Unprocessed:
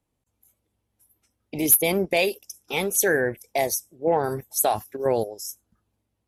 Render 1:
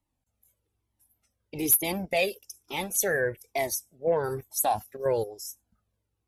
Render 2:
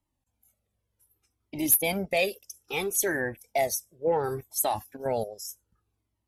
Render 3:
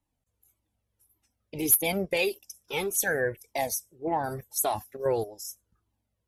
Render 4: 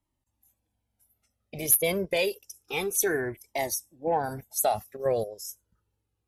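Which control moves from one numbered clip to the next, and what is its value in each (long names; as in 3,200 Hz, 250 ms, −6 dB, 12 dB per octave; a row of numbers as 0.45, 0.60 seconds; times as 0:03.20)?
flanger whose copies keep moving one way, speed: 1.1, 0.65, 1.7, 0.29 Hertz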